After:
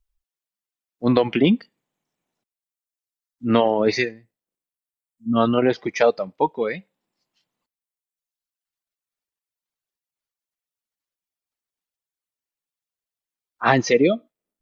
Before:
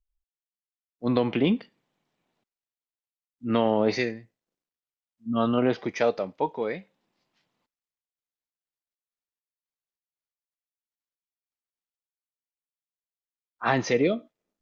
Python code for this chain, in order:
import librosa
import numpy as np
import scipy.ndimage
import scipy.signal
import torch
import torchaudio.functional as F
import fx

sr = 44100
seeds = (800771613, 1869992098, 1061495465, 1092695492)

y = fx.dereverb_blind(x, sr, rt60_s=1.6)
y = y * librosa.db_to_amplitude(7.0)